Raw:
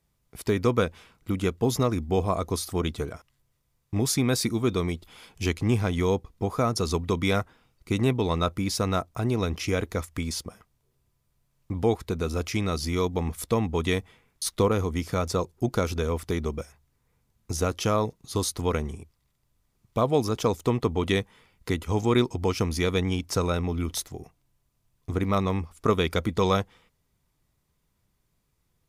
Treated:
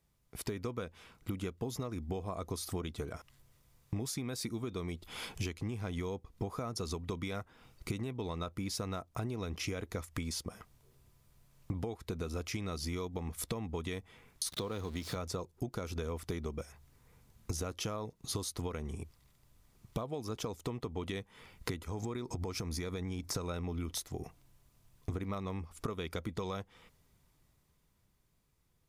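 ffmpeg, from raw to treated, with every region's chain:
-filter_complex "[0:a]asettb=1/sr,asplit=3[a][b][c];[a]atrim=end=14.524[d];[b]atrim=start=14.52:end=15.16,asetpts=PTS-STARTPTS,afade=t=in:d=0.004:c=qsin,afade=t=out:st=0.636:d=0.004:c=qsin,aeval=exprs='val(0)+0.5*0.0168*sgn(val(0))':c=same,highpass=74,equalizer=f=3.9k:w=2.8:g=10[e];[c]atrim=start=15.156[f];[d][e]acrossfade=d=0.004:c1=hsin:c2=qsin[g];[g][f]acrossfade=d=0.004:c1=qsin:c2=hsin,asettb=1/sr,asplit=3[h][i][j];[h]atrim=end=21.824[k];[i]atrim=start=21.82:end=23.35,asetpts=PTS-STARTPTS,afade=t=in:d=0.004:c=qsin,afade=t=out:st=1.526:d=0.004:c=qsin,equalizer=f=2.9k:t=o:w=0.3:g=-9,acompressor=threshold=-32dB:ratio=6:attack=3.2:release=140:knee=1:detection=peak[l];[j]atrim=start=23.346[m];[k][l]acrossfade=d=0.004:c1=hsin:c2=qsin[n];[n][m]acrossfade=d=0.004:c1=qsin:c2=hsin,dynaudnorm=f=110:g=31:m=11.5dB,alimiter=limit=-8dB:level=0:latency=1:release=386,acompressor=threshold=-32dB:ratio=16,volume=-2.5dB"

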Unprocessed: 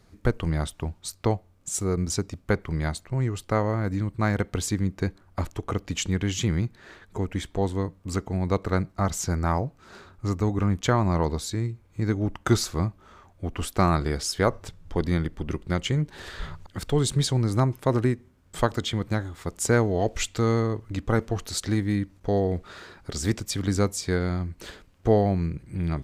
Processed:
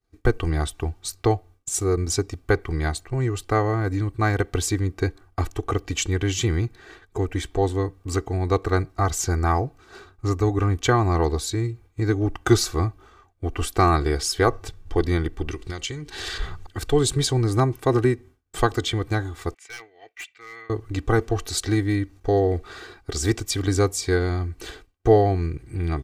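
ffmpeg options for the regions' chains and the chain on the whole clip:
-filter_complex "[0:a]asettb=1/sr,asplit=3[a][b][c];[a]atrim=end=15.484[d];[b]atrim=start=15.48:end=16.38,asetpts=PTS-STARTPTS,afade=t=in:d=0.004:c=qsin,afade=t=out:st=0.896:d=0.004:c=qsin,equalizer=f=5.1k:t=o:w=2.6:g=10,acompressor=threshold=-29dB:ratio=10:attack=3.2:release=140:knee=1:detection=peak[e];[c]atrim=start=16.376[f];[d][e]acrossfade=d=0.004:c1=hsin:c2=qsin[g];[g][f]acrossfade=d=0.004:c1=qsin:c2=hsin,asettb=1/sr,asplit=3[h][i][j];[h]atrim=end=19.544[k];[i]atrim=start=19.54:end=20.7,asetpts=PTS-STARTPTS,afade=t=in:d=0.004:c=qsin,afade=t=out:st=1.156:d=0.004:c=qsin,bandpass=f=2.2k:t=q:w=4.7,aeval=exprs='0.02*(abs(mod(val(0)/0.02+3,4)-2)-1)':c=same[l];[j]atrim=start=20.696[m];[k][l]acrossfade=d=0.004:c1=hsin:c2=qsin[n];[n][m]acrossfade=d=0.004:c1=qsin:c2=hsin,agate=range=-33dB:threshold=-44dB:ratio=3:detection=peak,aecho=1:1:2.6:0.72,volume=2dB"

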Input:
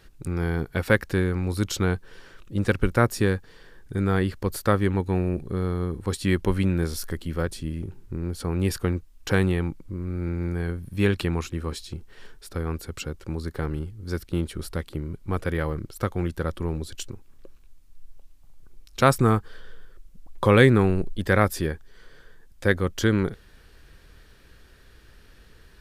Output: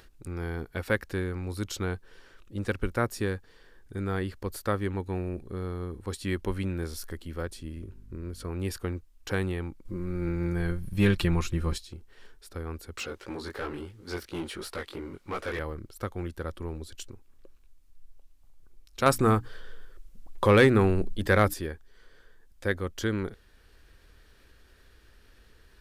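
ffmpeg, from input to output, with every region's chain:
-filter_complex "[0:a]asettb=1/sr,asplit=3[a][b][c];[a]atrim=end=7.764[d];[b]atrim=start=7.76:end=8.5,asetpts=PTS-STARTPTS,afade=t=in:d=0.004:c=qsin,afade=t=out:st=0.736:d=0.004:c=qsin,aeval=exprs='val(0)+0.00794*(sin(2*PI*50*n/s)+sin(2*PI*2*50*n/s)/2+sin(2*PI*3*50*n/s)/3+sin(2*PI*4*50*n/s)/4+sin(2*PI*5*50*n/s)/5)':c=same,asuperstop=centerf=810:order=4:qfactor=4.6[e];[c]atrim=start=8.496[f];[d][e]acrossfade=d=0.004:c1=hsin:c2=qsin[g];[g][f]acrossfade=d=0.004:c1=qsin:c2=hsin,asettb=1/sr,asplit=3[h][i][j];[h]atrim=end=9.854[k];[i]atrim=start=9.85:end=11.78,asetpts=PTS-STARTPTS,afade=t=in:d=0.004:c=qsin,afade=t=out:st=1.926:d=0.004:c=qsin,aecho=1:1:5.7:0.54,atrim=end_sample=85113,asubboost=boost=6:cutoff=170,acontrast=48[l];[j]atrim=start=11.776[m];[k][l]acrossfade=d=0.004:c1=hsin:c2=qsin[n];[n][m]acrossfade=d=0.004:c1=qsin:c2=hsin,asettb=1/sr,asplit=3[o][p][q];[o]atrim=end=12.974[r];[p]atrim=start=12.97:end=15.59,asetpts=PTS-STARTPTS,afade=t=in:d=0.004:c=qsin,afade=t=out:st=2.616:d=0.004:c=qsin,flanger=delay=16:depth=6.7:speed=2.9,asplit=2[s][t];[t]highpass=f=720:p=1,volume=21dB,asoftclip=type=tanh:threshold=-16.5dB[u];[s][u]amix=inputs=2:normalize=0,lowpass=f=4.1k:p=1,volume=-6dB[v];[q]atrim=start=15.586[w];[r][v]acrossfade=d=0.004:c1=hsin:c2=qsin[x];[x][w]acrossfade=d=0.004:c1=qsin:c2=hsin,asettb=1/sr,asplit=3[y][z][aa];[y]atrim=end=19.064[ab];[z]atrim=start=19.06:end=21.54,asetpts=PTS-STARTPTS,afade=t=in:d=0.004:c=qsin,afade=t=out:st=2.476:d=0.004:c=qsin,bandreject=f=60:t=h:w=6,bandreject=f=120:t=h:w=6,bandreject=f=180:t=h:w=6,bandreject=f=240:t=h:w=6,bandreject=f=300:t=h:w=6,acontrast=57[ac];[aa]atrim=start=21.536[ad];[ab][ac]acrossfade=d=0.004:c1=hsin:c2=qsin[ae];[ae][ad]acrossfade=d=0.004:c1=qsin:c2=hsin,equalizer=f=150:t=o:w=0.6:g=-7,acompressor=mode=upward:threshold=-44dB:ratio=2.5,volume=-6.5dB"

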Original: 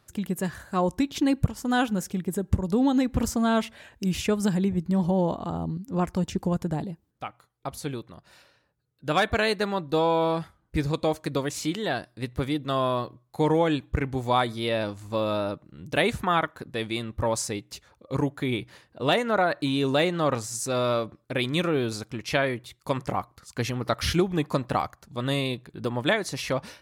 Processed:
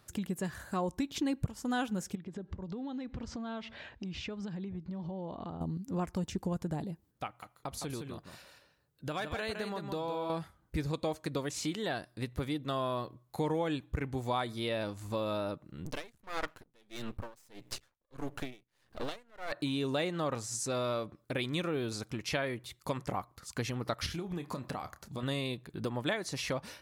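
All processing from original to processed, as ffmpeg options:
-filter_complex "[0:a]asettb=1/sr,asplit=3[a][b][c];[a]atrim=end=2.154[d];[b]atrim=start=2.15:end=5.61,asetpts=PTS-STARTPTS,afade=t=in:d=0.004:c=qsin,afade=t=out:st=3.456:d=0.004:c=qsin,lowpass=f=4.8k:w=0.5412,lowpass=f=4.8k:w=1.3066,acompressor=threshold=-38dB:ratio=4:attack=3.2:release=140:knee=1:detection=peak[e];[c]atrim=start=5.606[f];[d][e]acrossfade=d=0.004:c1=hsin:c2=qsin[g];[g][f]acrossfade=d=0.004:c1=qsin:c2=hsin,asettb=1/sr,asplit=3[h][i][j];[h]atrim=end=7.264[k];[i]atrim=start=7.26:end=10.3,asetpts=PTS-STARTPTS,afade=t=in:d=0.004:c=qsin,afade=t=out:st=3.036:d=0.004:c=qsin,acompressor=threshold=-34dB:ratio=2:attack=3.2:release=140:knee=1:detection=peak,aecho=1:1:162:0.447,atrim=end_sample=134064[l];[j]atrim=start=10.296[m];[k][l]acrossfade=d=0.004:c1=hsin:c2=qsin[n];[n][m]acrossfade=d=0.004:c1=qsin:c2=hsin,asettb=1/sr,asplit=3[o][p][q];[o]atrim=end=15.854[r];[p]atrim=start=15.85:end=19.52,asetpts=PTS-STARTPTS,afade=t=in:d=0.004:c=qsin,afade=t=out:st=3.666:d=0.004:c=qsin,acontrast=71,aeval=exprs='max(val(0),0)':c=same,aeval=exprs='val(0)*pow(10,-38*(0.5-0.5*cos(2*PI*1.6*n/s))/20)':c=same[s];[q]atrim=start=19.516[t];[r][s]acrossfade=d=0.004:c1=hsin:c2=qsin[u];[u][t]acrossfade=d=0.004:c1=qsin:c2=hsin,asettb=1/sr,asplit=3[v][w][x];[v]atrim=end=24.064[y];[w]atrim=start=24.06:end=25.23,asetpts=PTS-STARTPTS,afade=t=in:d=0.004:c=qsin,afade=t=out:st=1.166:d=0.004:c=qsin,acompressor=threshold=-31dB:ratio=5:attack=3.2:release=140:knee=1:detection=peak,asplit=2[z][aa];[aa]adelay=29,volume=-11.5dB[ab];[z][ab]amix=inputs=2:normalize=0,atrim=end_sample=51597[ac];[x]atrim=start=25.226[ad];[y][ac]acrossfade=d=0.004:c1=hsin:c2=qsin[ae];[ae][ad]acrossfade=d=0.004:c1=qsin:c2=hsin,acrossover=split=9400[af][ag];[ag]acompressor=threshold=-56dB:ratio=4:attack=1:release=60[ah];[af][ah]amix=inputs=2:normalize=0,highshelf=f=9.7k:g=6,acompressor=threshold=-37dB:ratio=2"

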